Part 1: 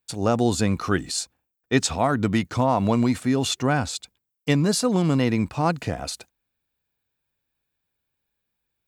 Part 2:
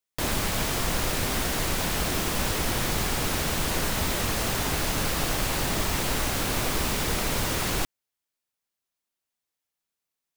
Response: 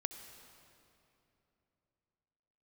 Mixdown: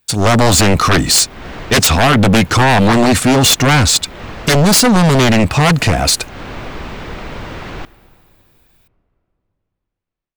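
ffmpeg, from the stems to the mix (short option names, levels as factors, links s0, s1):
-filter_complex "[0:a]equalizer=f=490:t=o:w=2.9:g=-4.5,aeval=exprs='0.355*sin(PI/2*5.01*val(0)/0.355)':c=same,volume=0.944,asplit=2[s0][s1];[1:a]lowpass=2700,volume=0.376,asplit=2[s2][s3];[s3]volume=0.398[s4];[s1]apad=whole_len=457064[s5];[s2][s5]sidechaincompress=threshold=0.0282:ratio=8:attack=16:release=194[s6];[2:a]atrim=start_sample=2205[s7];[s4][s7]afir=irnorm=-1:irlink=0[s8];[s0][s6][s8]amix=inputs=3:normalize=0,dynaudnorm=f=130:g=3:m=2.24,asoftclip=type=tanh:threshold=0.531"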